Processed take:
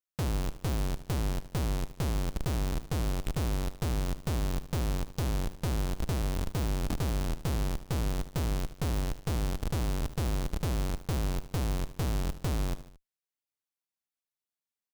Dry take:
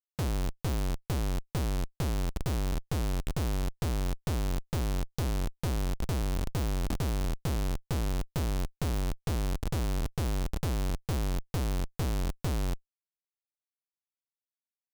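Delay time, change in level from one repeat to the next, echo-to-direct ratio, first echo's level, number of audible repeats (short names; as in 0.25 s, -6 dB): 75 ms, -5.5 dB, -12.5 dB, -14.0 dB, 3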